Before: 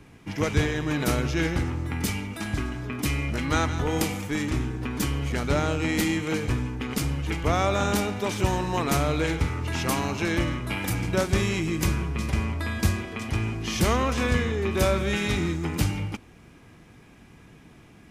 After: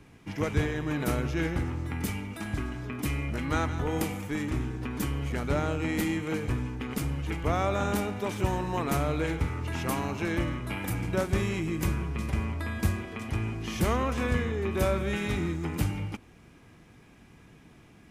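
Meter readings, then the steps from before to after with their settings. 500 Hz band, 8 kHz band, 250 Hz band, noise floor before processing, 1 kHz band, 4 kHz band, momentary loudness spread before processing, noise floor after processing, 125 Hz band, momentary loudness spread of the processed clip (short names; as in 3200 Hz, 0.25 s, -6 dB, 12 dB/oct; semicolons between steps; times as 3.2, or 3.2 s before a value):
-3.5 dB, -8.0 dB, -3.5 dB, -51 dBFS, -4.0 dB, -8.5 dB, 6 LU, -55 dBFS, -3.5 dB, 6 LU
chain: dynamic EQ 5000 Hz, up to -7 dB, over -46 dBFS, Q 0.78; gain -3.5 dB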